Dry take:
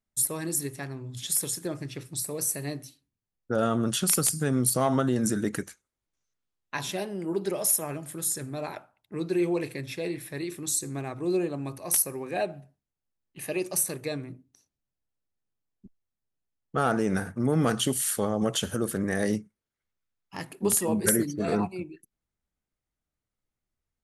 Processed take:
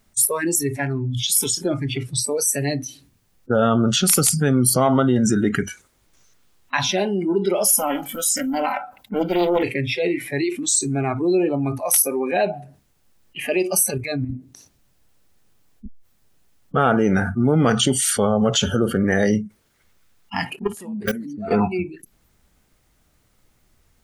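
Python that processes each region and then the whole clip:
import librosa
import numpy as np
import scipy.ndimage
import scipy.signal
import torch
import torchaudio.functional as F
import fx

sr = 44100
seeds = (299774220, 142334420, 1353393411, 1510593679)

y = fx.chain(x, sr, fx.comb(ms=3.9, depth=0.59),
    fx.doppler_dist(depth_ms=0.58), at=(7.65, 9.63))
y = fx.chain(y, sr, fx.low_shelf(hz=200.0, db=7.0),
    fx.level_steps(step_db=12), at=(13.9, 14.32))
y = fx.chain(y, sr, fx.level_steps(step_db=22),
    fx.high_shelf(hz=3900.0, db=-5.5),
    fx.clip_hard(threshold_db=-25.0), at=(20.56, 21.51))
y = fx.noise_reduce_blind(y, sr, reduce_db=21)
y = fx.env_flatten(y, sr, amount_pct=50)
y = F.gain(torch.from_numpy(y), 6.5).numpy()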